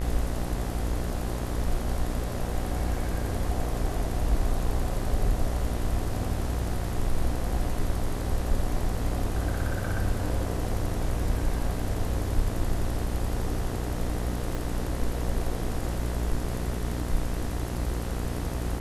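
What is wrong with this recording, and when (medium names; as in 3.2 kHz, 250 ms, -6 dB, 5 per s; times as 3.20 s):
buzz 60 Hz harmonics 34 -32 dBFS
14.55 s: pop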